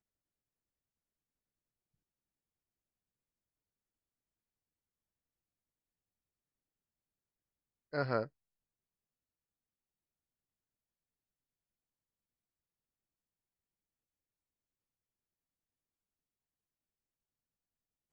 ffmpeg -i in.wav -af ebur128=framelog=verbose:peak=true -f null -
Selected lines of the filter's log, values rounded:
Integrated loudness:
  I:         -37.5 LUFS
  Threshold: -47.5 LUFS
Loudness range:
  LRA:         3.6 LU
  Threshold: -64.3 LUFS
  LRA low:   -47.5 LUFS
  LRA high:  -43.9 LUFS
True peak:
  Peak:      -18.0 dBFS